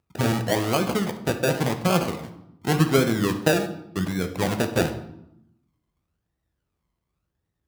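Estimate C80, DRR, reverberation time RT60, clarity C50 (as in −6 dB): 13.5 dB, 6.5 dB, 0.80 s, 10.0 dB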